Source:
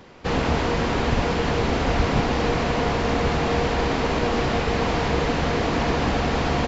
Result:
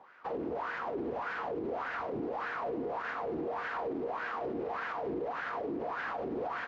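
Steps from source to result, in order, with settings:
LFO wah 1.7 Hz 320–1,600 Hz, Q 4.9
brickwall limiter −30 dBFS, peak gain reduction 9 dB
level +1.5 dB

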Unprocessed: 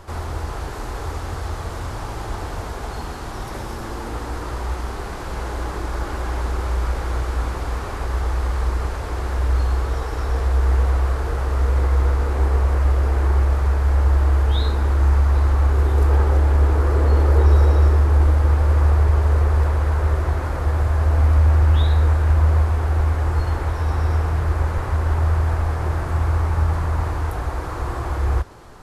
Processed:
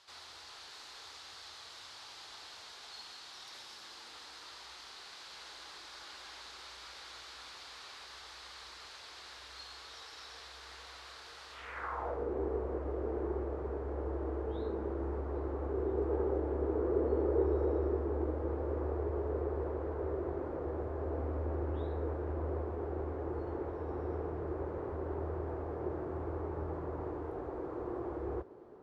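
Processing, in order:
band-pass filter sweep 4,100 Hz → 390 Hz, 0:11.50–0:12.26
level −2.5 dB

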